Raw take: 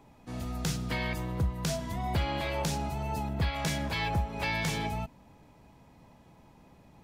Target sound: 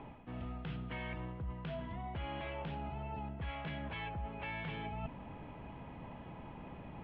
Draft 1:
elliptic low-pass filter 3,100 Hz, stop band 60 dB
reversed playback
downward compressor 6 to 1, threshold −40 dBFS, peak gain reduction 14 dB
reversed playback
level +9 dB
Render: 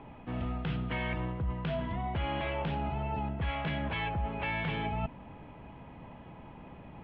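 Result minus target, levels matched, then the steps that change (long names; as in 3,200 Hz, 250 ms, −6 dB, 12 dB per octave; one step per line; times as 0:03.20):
downward compressor: peak gain reduction −8.5 dB
change: downward compressor 6 to 1, threshold −50 dBFS, peak gain reduction 22 dB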